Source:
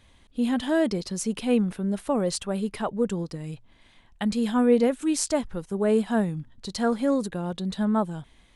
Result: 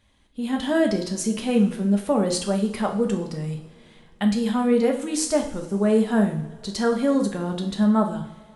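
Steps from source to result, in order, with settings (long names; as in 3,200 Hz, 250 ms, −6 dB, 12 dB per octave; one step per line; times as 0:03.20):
automatic gain control gain up to 8.5 dB
coupled-rooms reverb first 0.53 s, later 2.8 s, from −20 dB, DRR 2.5 dB
level −6.5 dB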